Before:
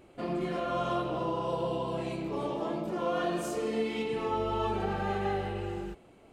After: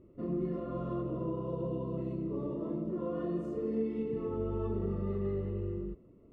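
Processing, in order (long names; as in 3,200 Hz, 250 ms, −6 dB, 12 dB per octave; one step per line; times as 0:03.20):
moving average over 56 samples
level +2 dB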